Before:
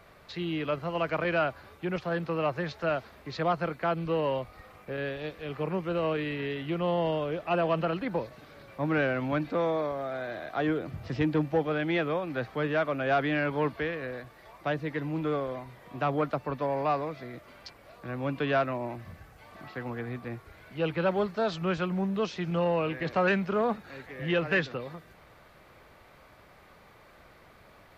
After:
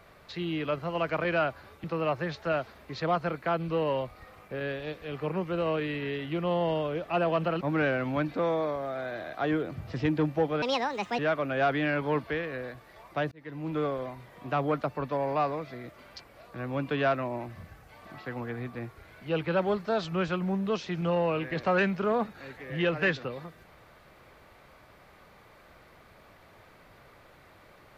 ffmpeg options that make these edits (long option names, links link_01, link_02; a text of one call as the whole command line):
ffmpeg -i in.wav -filter_complex "[0:a]asplit=6[link_01][link_02][link_03][link_04][link_05][link_06];[link_01]atrim=end=1.842[link_07];[link_02]atrim=start=2.208:end=7.982[link_08];[link_03]atrim=start=8.768:end=11.784[link_09];[link_04]atrim=start=11.78:end=12.68,asetpts=PTS-STARTPTS,asetrate=70119,aresample=44100,atrim=end_sample=24962,asetpts=PTS-STARTPTS[link_10];[link_05]atrim=start=12.676:end=14.81,asetpts=PTS-STARTPTS,afade=type=out:start_time=2.13:duration=0.004:curve=hsin[link_11];[link_06]atrim=start=14.81,asetpts=PTS-STARTPTS,afade=type=in:duration=0.47[link_12];[link_07][link_08]acrossfade=duration=0.004:curve1=hsin:curve2=hsin[link_13];[link_13][link_09]acrossfade=duration=0.004:curve1=hsin:curve2=hsin[link_14];[link_14][link_10]acrossfade=duration=0.004:curve1=hsin:curve2=hsin[link_15];[link_11][link_12]concat=n=2:v=0:a=1[link_16];[link_15][link_16]acrossfade=duration=0.004:curve1=hsin:curve2=hsin" out.wav